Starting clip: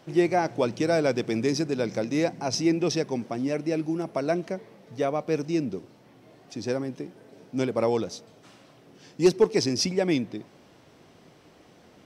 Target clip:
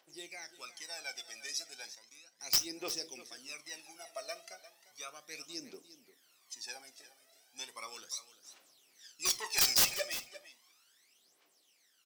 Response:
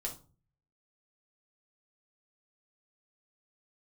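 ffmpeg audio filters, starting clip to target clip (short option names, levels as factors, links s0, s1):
-filter_complex "[0:a]highpass=f=400:p=1,asettb=1/sr,asplit=3[s0][s1][s2];[s0]atrim=end=9.254[s3];[s1]atrim=start=9.25:end=10.02,asetpts=PTS-STARTPTS,afade=t=in:d=0.004:c=qsin,afade=t=out:st=0.766:d=0.004:c=qsin,asplit=2[s4][s5];[s5]highpass=f=720:p=1,volume=7.94,asoftclip=type=tanh:threshold=0.316[s6];[s4][s6]amix=inputs=2:normalize=0,lowpass=f=5800:p=1,volume=0.501[s7];[s2]atrim=start=10.016[s8];[s3][s7]acrossfade=d=0.004:c1=hsin:c2=qsin[s9];[s9][s8]acrossfade=d=0.004:c1=qsin:c2=hsin,dynaudnorm=f=410:g=9:m=1.78,aphaser=in_gain=1:out_gain=1:delay=1.7:decay=0.78:speed=0.35:type=triangular,aderivative,aeval=exprs='(mod(4.47*val(0)+1,2)-1)/4.47':c=same,aecho=1:1:350:0.178,asettb=1/sr,asplit=3[s10][s11][s12];[s10]atrim=end=1.944[s13];[s11]atrim=start=1.94:end=2.4,asetpts=PTS-STARTPTS,afade=t=in:d=0.004:c=qsin,afade=t=out:st=0.456:d=0.004:c=qsin,acompressor=threshold=0.00355:ratio=10[s14];[s12]atrim=start=2.396[s15];[s13][s14]acrossfade=d=0.004:c1=hsin:c2=qsin[s16];[s16][s15]acrossfade=d=0.004:c1=qsin:c2=hsin,asplit=2[s17][s18];[1:a]atrim=start_sample=2205,afade=t=out:st=0.15:d=0.01,atrim=end_sample=7056[s19];[s18][s19]afir=irnorm=-1:irlink=0,volume=0.447[s20];[s17][s20]amix=inputs=2:normalize=0,volume=0.376"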